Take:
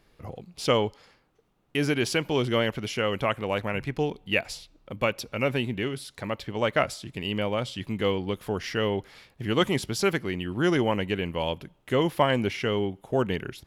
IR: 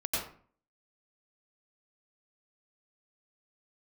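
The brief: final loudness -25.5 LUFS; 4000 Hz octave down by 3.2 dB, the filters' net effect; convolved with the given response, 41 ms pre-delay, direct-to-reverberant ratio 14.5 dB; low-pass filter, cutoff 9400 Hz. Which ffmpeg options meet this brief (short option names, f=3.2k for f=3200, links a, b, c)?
-filter_complex "[0:a]lowpass=9.4k,equalizer=f=4k:t=o:g=-5,asplit=2[a][b];[1:a]atrim=start_sample=2205,adelay=41[c];[b][c]afir=irnorm=-1:irlink=0,volume=-20.5dB[d];[a][d]amix=inputs=2:normalize=0,volume=2.5dB"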